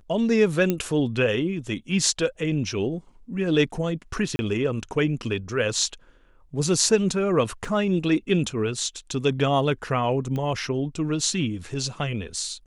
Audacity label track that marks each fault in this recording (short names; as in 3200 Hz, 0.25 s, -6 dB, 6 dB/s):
0.700000	0.700000	pop -10 dBFS
4.360000	4.390000	gap 30 ms
7.650000	7.650000	gap 3 ms
10.360000	10.360000	pop -19 dBFS